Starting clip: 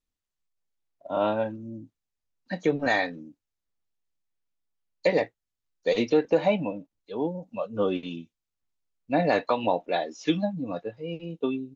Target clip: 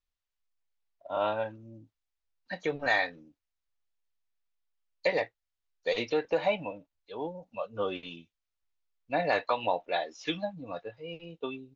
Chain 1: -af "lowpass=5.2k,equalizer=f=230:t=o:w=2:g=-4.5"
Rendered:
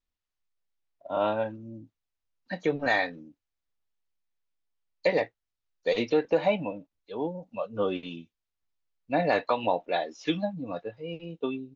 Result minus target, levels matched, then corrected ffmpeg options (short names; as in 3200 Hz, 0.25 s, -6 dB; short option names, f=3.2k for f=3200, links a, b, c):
250 Hz band +4.5 dB
-af "lowpass=5.2k,equalizer=f=230:t=o:w=2:g=-13"